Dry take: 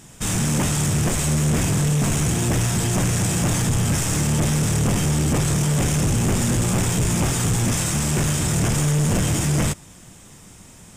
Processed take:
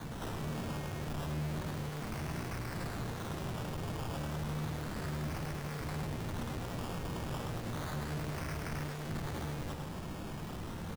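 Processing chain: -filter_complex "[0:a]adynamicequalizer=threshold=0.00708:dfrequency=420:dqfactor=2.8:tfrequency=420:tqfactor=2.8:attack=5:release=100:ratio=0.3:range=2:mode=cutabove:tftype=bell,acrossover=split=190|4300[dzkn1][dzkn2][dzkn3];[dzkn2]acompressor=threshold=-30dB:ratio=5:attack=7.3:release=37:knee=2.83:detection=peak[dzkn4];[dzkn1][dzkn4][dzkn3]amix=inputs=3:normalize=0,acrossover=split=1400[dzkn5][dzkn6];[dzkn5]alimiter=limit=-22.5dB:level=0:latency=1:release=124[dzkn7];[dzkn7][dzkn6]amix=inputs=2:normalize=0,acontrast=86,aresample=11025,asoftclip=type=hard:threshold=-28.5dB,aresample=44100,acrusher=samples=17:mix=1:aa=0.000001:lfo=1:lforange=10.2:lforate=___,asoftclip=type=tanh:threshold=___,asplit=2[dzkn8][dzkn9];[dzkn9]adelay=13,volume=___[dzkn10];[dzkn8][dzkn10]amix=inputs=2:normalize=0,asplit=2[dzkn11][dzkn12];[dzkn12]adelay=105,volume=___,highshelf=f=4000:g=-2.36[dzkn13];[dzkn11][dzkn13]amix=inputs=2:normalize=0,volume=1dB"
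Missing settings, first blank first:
0.32, -39.5dB, -12dB, -6dB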